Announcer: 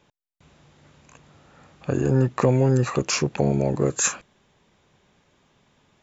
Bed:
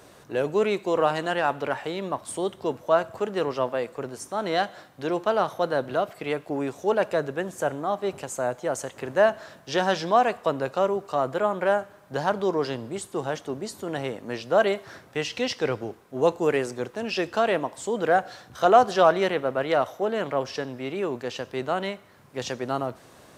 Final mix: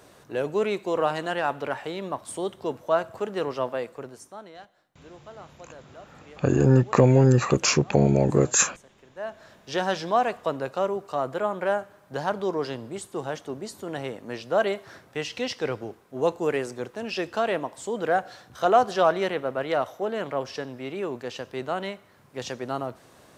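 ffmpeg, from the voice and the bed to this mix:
ffmpeg -i stem1.wav -i stem2.wav -filter_complex "[0:a]adelay=4550,volume=2dB[link_01];[1:a]volume=17dB,afade=type=out:start_time=3.76:duration=0.77:silence=0.105925,afade=type=in:start_time=9.15:duration=0.61:silence=0.112202[link_02];[link_01][link_02]amix=inputs=2:normalize=0" out.wav

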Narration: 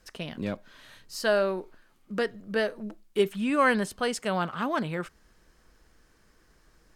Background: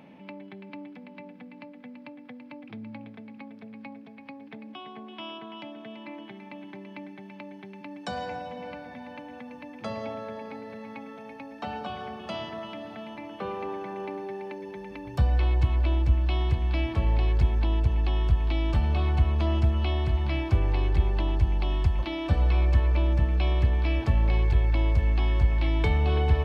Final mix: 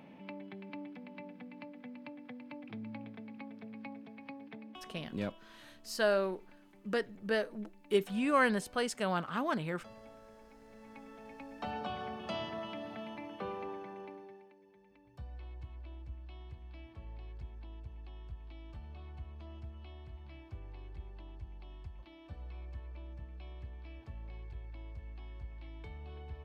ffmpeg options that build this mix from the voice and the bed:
ffmpeg -i stem1.wav -i stem2.wav -filter_complex "[0:a]adelay=4750,volume=-5dB[link_01];[1:a]volume=12dB,afade=type=out:start_time=4.31:duration=0.96:silence=0.158489,afade=type=in:start_time=10.58:duration=1.26:silence=0.16788,afade=type=out:start_time=13.04:duration=1.47:silence=0.1[link_02];[link_01][link_02]amix=inputs=2:normalize=0" out.wav

